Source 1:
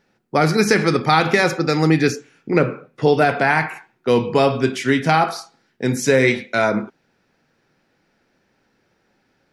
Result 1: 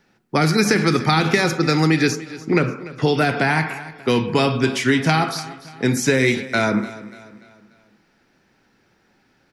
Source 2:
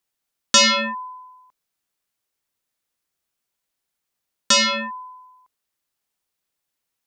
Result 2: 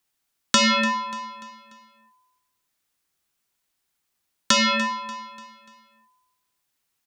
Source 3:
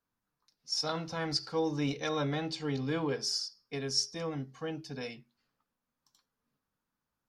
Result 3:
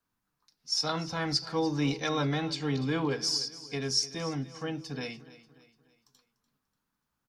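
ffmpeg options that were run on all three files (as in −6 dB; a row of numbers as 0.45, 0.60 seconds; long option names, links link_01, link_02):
-filter_complex "[0:a]acrossover=split=440|1200|3100[link_01][link_02][link_03][link_04];[link_01]acompressor=threshold=-19dB:ratio=4[link_05];[link_02]acompressor=threshold=-28dB:ratio=4[link_06];[link_03]acompressor=threshold=-27dB:ratio=4[link_07];[link_04]acompressor=threshold=-28dB:ratio=4[link_08];[link_05][link_06][link_07][link_08]amix=inputs=4:normalize=0,equalizer=frequency=530:width_type=o:width=0.63:gain=-4.5,aecho=1:1:293|586|879|1172:0.141|0.0607|0.0261|0.0112,volume=4dB"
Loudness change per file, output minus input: −1.0, −4.0, +3.0 LU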